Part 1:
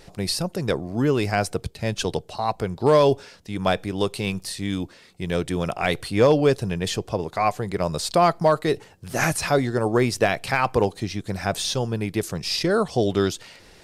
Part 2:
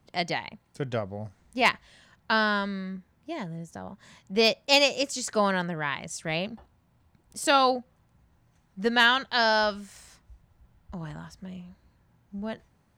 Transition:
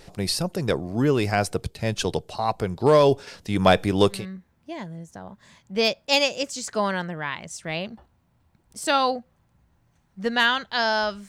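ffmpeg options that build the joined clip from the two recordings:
ffmpeg -i cue0.wav -i cue1.wav -filter_complex "[0:a]asettb=1/sr,asplit=3[link_01][link_02][link_03];[link_01]atrim=end=3.274[link_04];[link_02]atrim=start=3.27:end=4.26,asetpts=PTS-STARTPTS,afade=type=in:duration=0.004:curve=qsin,afade=type=out:start_time=0.986:duration=0.004:curve=qsin,acontrast=34[link_05];[link_03]atrim=start=4.256[link_06];[link_04][link_05]acrossfade=duration=0.004:curve1=hsin:curve2=qsin[link_07];[link_07][link_06]acrossfade=duration=0.004:curve1=qsin:curve2=hsin,apad=whole_dur=11.28,atrim=end=11.28,atrim=end=4.26,asetpts=PTS-STARTPTS[link_08];[1:a]atrim=start=2.68:end=9.88,asetpts=PTS-STARTPTS[link_09];[link_08][link_09]acrossfade=duration=0.18:curve1=tri:curve2=tri" out.wav

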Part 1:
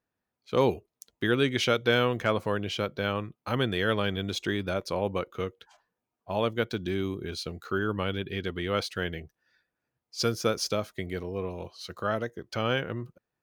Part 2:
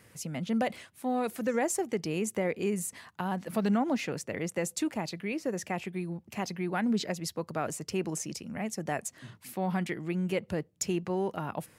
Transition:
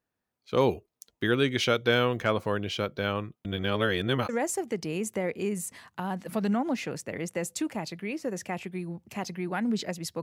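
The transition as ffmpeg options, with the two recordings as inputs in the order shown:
ffmpeg -i cue0.wav -i cue1.wav -filter_complex "[0:a]apad=whole_dur=10.22,atrim=end=10.22,asplit=2[link_01][link_02];[link_01]atrim=end=3.452[link_03];[link_02]atrim=start=3.448:end=4.292,asetpts=PTS-STARTPTS,areverse[link_04];[1:a]atrim=start=1.498:end=7.43[link_05];[link_03][link_04]acrossfade=duration=0.004:curve1=hsin:curve2=hsin[link_06];[link_06][link_05]acrossfade=duration=0.004:curve1=hsin:curve2=hsin" out.wav

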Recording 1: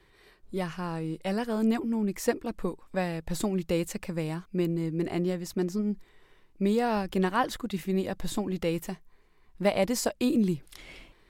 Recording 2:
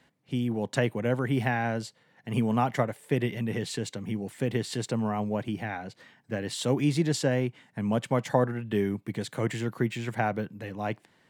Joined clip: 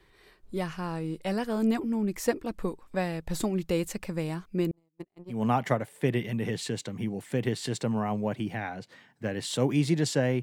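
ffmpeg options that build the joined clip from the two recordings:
ffmpeg -i cue0.wav -i cue1.wav -filter_complex "[0:a]asettb=1/sr,asplit=3[link_01][link_02][link_03];[link_01]atrim=end=4.714[link_04];[link_02]atrim=start=4.71:end=5.44,asetpts=PTS-STARTPTS,afade=type=in:duration=0.004:curve=qsin,afade=type=out:start_time=0.726:duration=0.004:curve=qsin,agate=range=-49dB:threshold=-25dB:ratio=16:release=100:detection=peak[link_05];[link_03]atrim=start=5.436[link_06];[link_04][link_05]acrossfade=duration=0.004:curve1=hsin:curve2=qsin[link_07];[link_07][link_06]acrossfade=duration=0.004:curve1=qsin:curve2=hsin,apad=whole_dur=10.42,atrim=end=10.42,atrim=end=5.44,asetpts=PTS-STARTPTS[link_08];[1:a]atrim=start=2.36:end=7.5,asetpts=PTS-STARTPTS[link_09];[link_08][link_09]acrossfade=duration=0.16:curve1=tri:curve2=tri" out.wav

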